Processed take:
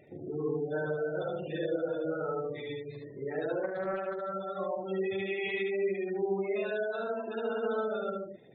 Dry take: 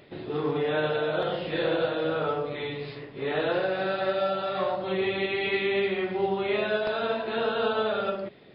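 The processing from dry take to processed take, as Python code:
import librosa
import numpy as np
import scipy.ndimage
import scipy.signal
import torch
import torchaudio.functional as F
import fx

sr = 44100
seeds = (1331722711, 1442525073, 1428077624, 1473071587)

y = fx.spec_gate(x, sr, threshold_db=-15, keep='strong')
y = fx.dynamic_eq(y, sr, hz=860.0, q=1.1, threshold_db=-43.0, ratio=4.0, max_db=-5)
y = y + 10.0 ** (-3.5 / 20.0) * np.pad(y, (int(73 * sr / 1000.0), 0))[:len(y)]
y = fx.doppler_dist(y, sr, depth_ms=0.21, at=(3.63, 4.33))
y = y * librosa.db_to_amplitude(-5.0)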